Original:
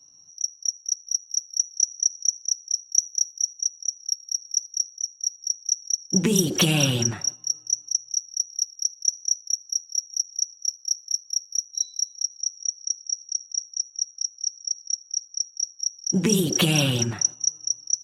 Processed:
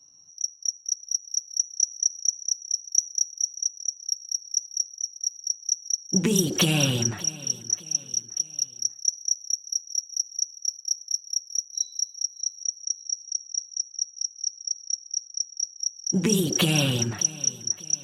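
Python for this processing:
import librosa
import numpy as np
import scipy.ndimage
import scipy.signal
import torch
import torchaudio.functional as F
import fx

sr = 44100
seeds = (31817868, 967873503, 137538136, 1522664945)

y = fx.echo_feedback(x, sr, ms=591, feedback_pct=42, wet_db=-19)
y = F.gain(torch.from_numpy(y), -1.5).numpy()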